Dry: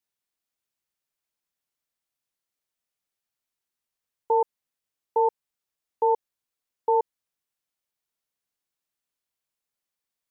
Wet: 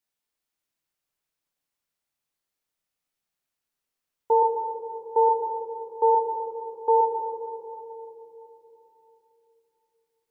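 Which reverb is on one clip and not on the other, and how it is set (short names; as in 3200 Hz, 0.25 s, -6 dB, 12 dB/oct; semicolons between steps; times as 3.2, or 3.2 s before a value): shoebox room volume 190 m³, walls hard, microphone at 0.42 m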